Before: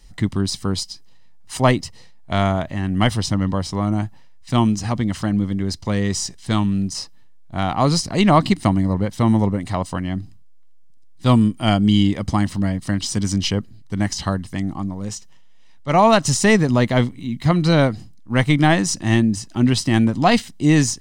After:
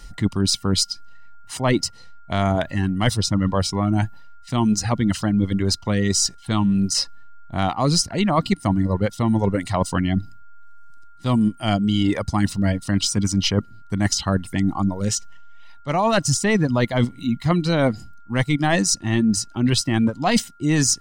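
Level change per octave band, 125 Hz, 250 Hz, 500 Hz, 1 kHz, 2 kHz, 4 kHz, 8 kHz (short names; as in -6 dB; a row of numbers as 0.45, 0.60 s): -2.5, -2.0, -2.5, -3.5, -2.5, +1.5, +3.5 dB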